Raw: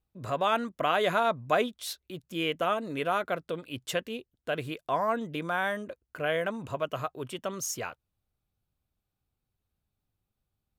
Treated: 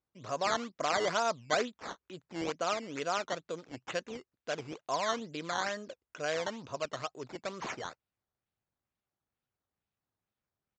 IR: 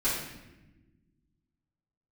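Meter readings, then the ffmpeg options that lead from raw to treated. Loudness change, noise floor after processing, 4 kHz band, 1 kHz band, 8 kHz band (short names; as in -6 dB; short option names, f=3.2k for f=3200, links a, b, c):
-4.5 dB, under -85 dBFS, -2.5 dB, -4.5 dB, -2.5 dB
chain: -af "acrusher=samples=12:mix=1:aa=0.000001:lfo=1:lforange=12:lforate=2.2,aresample=16000,aresample=44100,highpass=f=220:p=1,volume=-4dB"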